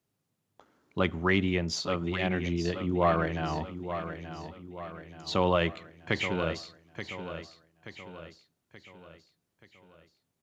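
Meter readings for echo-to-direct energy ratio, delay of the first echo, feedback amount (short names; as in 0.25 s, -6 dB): -9.0 dB, 0.879 s, 48%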